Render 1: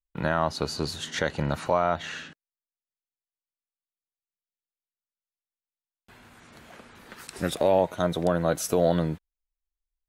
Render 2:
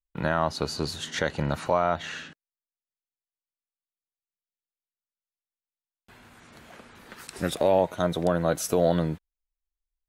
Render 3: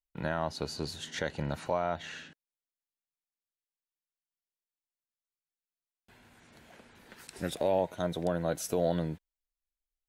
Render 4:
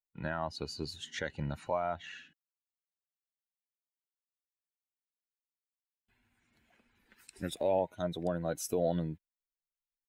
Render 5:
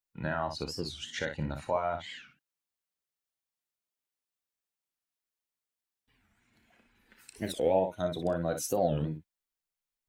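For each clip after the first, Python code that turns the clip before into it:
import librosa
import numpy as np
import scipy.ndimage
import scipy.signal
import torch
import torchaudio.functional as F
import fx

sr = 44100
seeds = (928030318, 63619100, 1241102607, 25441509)

y1 = x
y2 = fx.peak_eq(y1, sr, hz=1200.0, db=-7.0, octaves=0.29)
y2 = F.gain(torch.from_numpy(y2), -6.5).numpy()
y3 = fx.bin_expand(y2, sr, power=1.5)
y4 = fx.room_early_taps(y3, sr, ms=(32, 59), db=(-11.5, -8.0))
y4 = fx.record_warp(y4, sr, rpm=45.0, depth_cents=250.0)
y4 = F.gain(torch.from_numpy(y4), 2.5).numpy()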